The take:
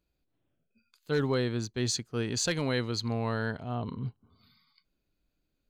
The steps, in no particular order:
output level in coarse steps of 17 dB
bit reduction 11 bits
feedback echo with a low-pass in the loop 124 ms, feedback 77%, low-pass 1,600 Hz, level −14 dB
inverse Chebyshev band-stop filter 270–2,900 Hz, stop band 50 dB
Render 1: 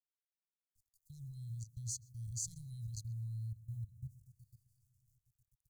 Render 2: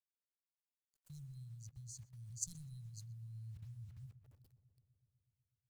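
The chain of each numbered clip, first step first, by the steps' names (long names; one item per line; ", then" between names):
feedback echo with a low-pass in the loop, then bit reduction, then output level in coarse steps, then inverse Chebyshev band-stop filter
inverse Chebyshev band-stop filter, then bit reduction, then output level in coarse steps, then feedback echo with a low-pass in the loop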